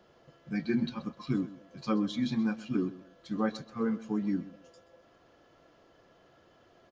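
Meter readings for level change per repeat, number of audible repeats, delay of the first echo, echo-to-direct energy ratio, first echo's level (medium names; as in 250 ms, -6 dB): -11.5 dB, 2, 129 ms, -16.5 dB, -17.0 dB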